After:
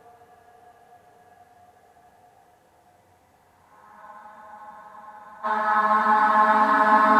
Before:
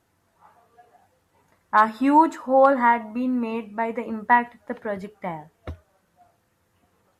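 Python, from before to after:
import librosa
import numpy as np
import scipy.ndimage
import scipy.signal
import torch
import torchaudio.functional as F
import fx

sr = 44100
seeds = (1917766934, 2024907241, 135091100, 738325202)

y = fx.paulstretch(x, sr, seeds[0], factor=7.4, window_s=1.0, from_s=0.79)
y = fx.spec_freeze(y, sr, seeds[1], at_s=4.03, hold_s=1.41)
y = F.gain(torch.from_numpy(y), 3.5).numpy()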